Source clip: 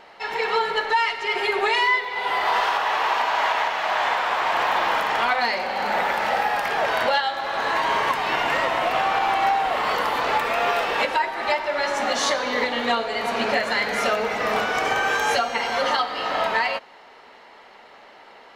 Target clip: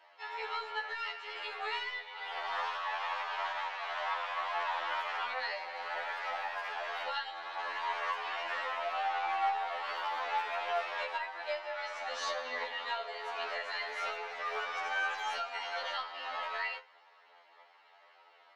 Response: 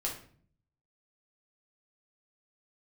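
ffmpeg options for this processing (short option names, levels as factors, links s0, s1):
-filter_complex "[0:a]highpass=350,aeval=exprs='0.335*(cos(1*acos(clip(val(0)/0.335,-1,1)))-cos(1*PI/2))+0.0237*(cos(2*acos(clip(val(0)/0.335,-1,1)))-cos(2*PI/2))+0.00422*(cos(3*acos(clip(val(0)/0.335,-1,1)))-cos(3*PI/2))':c=same,acrossover=split=530 5900:gain=0.224 1 0.158[s0][s1][s2];[s0][s1][s2]amix=inputs=3:normalize=0,flanger=delay=3.1:depth=8.9:regen=64:speed=0.2:shape=triangular,asplit=2[s3][s4];[1:a]atrim=start_sample=2205,afade=t=out:st=0.3:d=0.01,atrim=end_sample=13671,lowshelf=f=80:g=-12[s5];[s4][s5]afir=irnorm=-1:irlink=0,volume=0.188[s6];[s3][s6]amix=inputs=2:normalize=0,afftfilt=real='re*2*eq(mod(b,4),0)':imag='im*2*eq(mod(b,4),0)':win_size=2048:overlap=0.75,volume=0.422"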